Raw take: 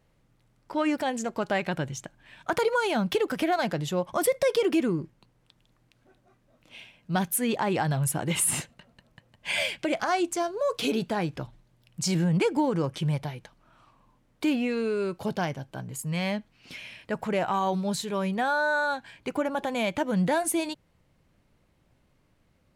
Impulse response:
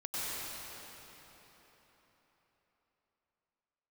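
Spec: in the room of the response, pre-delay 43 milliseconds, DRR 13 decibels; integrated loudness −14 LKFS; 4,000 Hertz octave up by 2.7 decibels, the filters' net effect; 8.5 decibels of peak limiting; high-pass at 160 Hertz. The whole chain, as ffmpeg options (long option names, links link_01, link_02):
-filter_complex "[0:a]highpass=160,equalizer=frequency=4000:width_type=o:gain=3.5,alimiter=limit=-20dB:level=0:latency=1,asplit=2[link_01][link_02];[1:a]atrim=start_sample=2205,adelay=43[link_03];[link_02][link_03]afir=irnorm=-1:irlink=0,volume=-18.5dB[link_04];[link_01][link_04]amix=inputs=2:normalize=0,volume=16dB"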